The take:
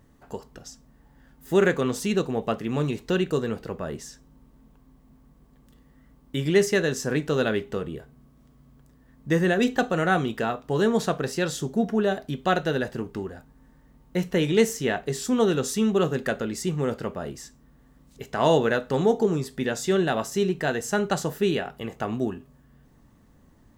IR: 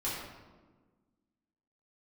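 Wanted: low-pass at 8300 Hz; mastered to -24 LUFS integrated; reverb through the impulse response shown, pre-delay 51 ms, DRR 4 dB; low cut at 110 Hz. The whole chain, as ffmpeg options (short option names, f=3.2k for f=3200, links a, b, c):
-filter_complex "[0:a]highpass=110,lowpass=8.3k,asplit=2[a][b];[1:a]atrim=start_sample=2205,adelay=51[c];[b][c]afir=irnorm=-1:irlink=0,volume=-9dB[d];[a][d]amix=inputs=2:normalize=0"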